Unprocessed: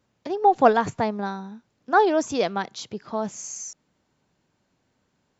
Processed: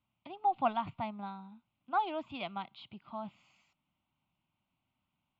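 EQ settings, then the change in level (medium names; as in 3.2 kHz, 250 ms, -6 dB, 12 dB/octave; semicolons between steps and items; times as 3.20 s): four-pole ladder low-pass 3.5 kHz, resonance 40%; static phaser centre 1.7 kHz, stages 6; -2.5 dB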